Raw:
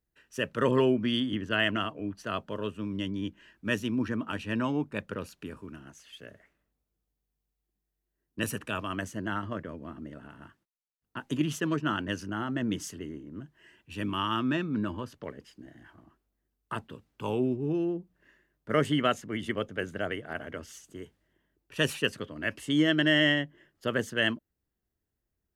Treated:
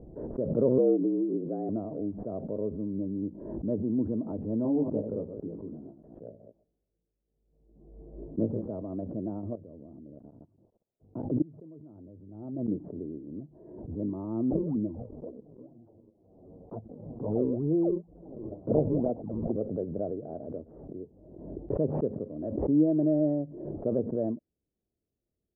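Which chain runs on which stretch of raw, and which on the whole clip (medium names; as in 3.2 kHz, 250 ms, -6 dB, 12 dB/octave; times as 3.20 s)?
0.78–1.69 s: peaking EQ 860 Hz -8 dB 1 oct + frequency shift +75 Hz
4.63–8.69 s: chunks repeated in reverse 125 ms, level -8 dB + doubling 18 ms -3 dB
9.55–12.68 s: peaking EQ 100 Hz +9 dB 0.38 oct + level held to a coarse grid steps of 24 dB
14.50–19.61 s: rippled EQ curve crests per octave 1.9, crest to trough 6 dB + decimation with a swept rate 35×, swing 160% 2.1 Hz + touch-sensitive flanger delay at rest 11 ms, full sweep at -24.5 dBFS
whole clip: steep low-pass 660 Hz 36 dB/octave; bass shelf 100 Hz -11 dB; swell ahead of each attack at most 50 dB/s; trim +2.5 dB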